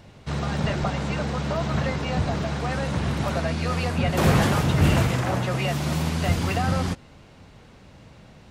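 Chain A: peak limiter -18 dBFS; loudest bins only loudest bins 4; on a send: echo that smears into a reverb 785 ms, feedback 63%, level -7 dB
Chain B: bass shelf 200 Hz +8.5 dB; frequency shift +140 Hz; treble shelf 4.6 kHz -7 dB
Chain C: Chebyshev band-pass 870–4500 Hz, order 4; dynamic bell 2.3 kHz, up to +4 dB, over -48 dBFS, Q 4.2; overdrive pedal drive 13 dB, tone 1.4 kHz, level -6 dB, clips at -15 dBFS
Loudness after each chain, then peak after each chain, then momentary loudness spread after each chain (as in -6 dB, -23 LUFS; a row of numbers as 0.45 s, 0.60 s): -30.5 LUFS, -19.0 LUFS, -29.5 LUFS; -17.0 dBFS, -2.0 dBFS, -17.0 dBFS; 8 LU, 8 LU, 5 LU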